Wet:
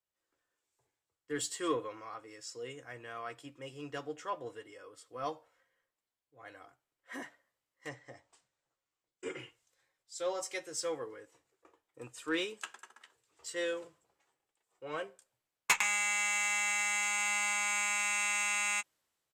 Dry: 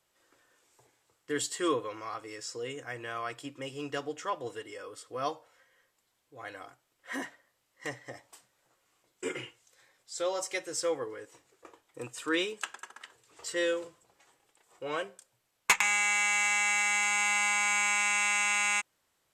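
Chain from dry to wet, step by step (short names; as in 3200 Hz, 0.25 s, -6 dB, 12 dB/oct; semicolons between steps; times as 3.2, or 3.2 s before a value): doubler 13 ms -11.5 dB; in parallel at -5 dB: soft clip -28 dBFS, distortion -10 dB; 7.89–9.39 on the sum: LPF 8600 Hz 24 dB/oct; three-band expander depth 40%; gain -8 dB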